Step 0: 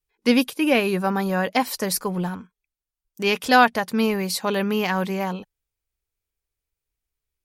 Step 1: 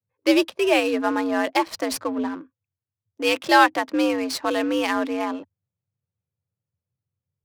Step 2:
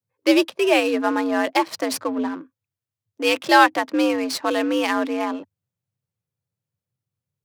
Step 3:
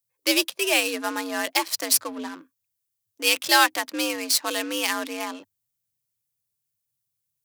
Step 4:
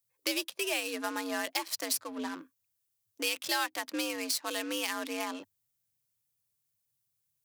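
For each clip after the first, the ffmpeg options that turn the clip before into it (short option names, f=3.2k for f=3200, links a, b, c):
-af "afreqshift=81,adynamicsmooth=sensitivity=7:basefreq=1.2k"
-af "highpass=f=100:w=0.5412,highpass=f=100:w=1.3066,volume=1.5dB"
-af "crystalizer=i=9:c=0,volume=-10.5dB"
-af "acompressor=threshold=-32dB:ratio=3"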